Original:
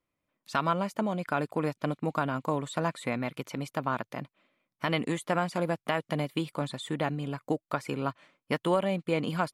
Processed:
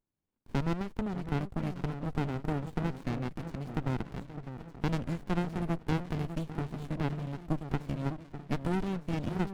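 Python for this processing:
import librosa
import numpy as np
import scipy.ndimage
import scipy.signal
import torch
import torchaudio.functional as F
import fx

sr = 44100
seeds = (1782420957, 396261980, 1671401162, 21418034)

y = fx.echo_alternate(x, sr, ms=604, hz=950.0, feedback_pct=65, wet_db=-7.5)
y = fx.running_max(y, sr, window=65)
y = y * 10.0 ** (-3.5 / 20.0)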